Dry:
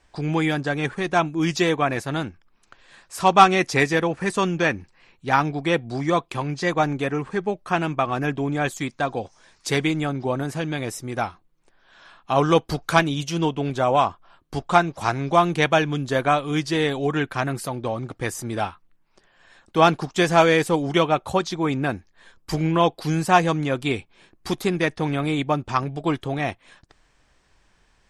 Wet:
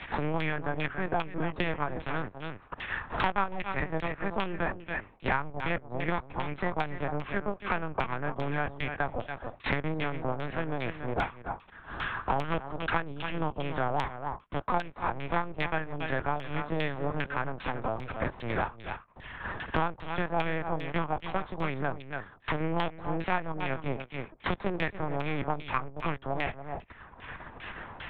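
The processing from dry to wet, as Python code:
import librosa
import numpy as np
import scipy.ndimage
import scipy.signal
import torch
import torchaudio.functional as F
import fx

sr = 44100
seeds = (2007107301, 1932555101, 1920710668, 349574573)

p1 = np.where(x < 0.0, 10.0 ** (-12.0 / 20.0) * x, x)
p2 = scipy.signal.sosfilt(scipy.signal.butter(2, 200.0, 'highpass', fs=sr, output='sos'), p1)
p3 = fx.high_shelf(p2, sr, hz=2000.0, db=7.0)
p4 = fx.lpc_vocoder(p3, sr, seeds[0], excitation='pitch_kept', order=8)
p5 = p4 + fx.echo_single(p4, sr, ms=282, db=-12.5, dry=0)
p6 = fx.filter_lfo_lowpass(p5, sr, shape='saw_down', hz=2.5, low_hz=760.0, high_hz=3100.0, q=1.4)
p7 = fx.band_squash(p6, sr, depth_pct=100)
y = F.gain(torch.from_numpy(p7), -6.5).numpy()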